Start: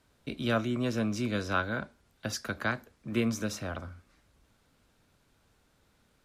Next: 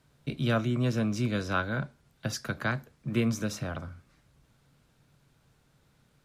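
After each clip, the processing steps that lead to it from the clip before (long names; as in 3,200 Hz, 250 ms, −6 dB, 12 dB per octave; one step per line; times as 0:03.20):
parametric band 140 Hz +13 dB 0.43 octaves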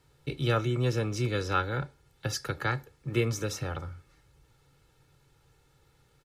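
comb filter 2.3 ms, depth 71%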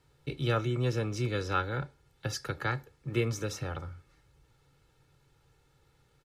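high-shelf EQ 7,500 Hz −4 dB
level −2 dB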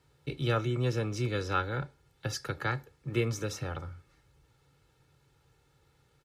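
high-pass filter 41 Hz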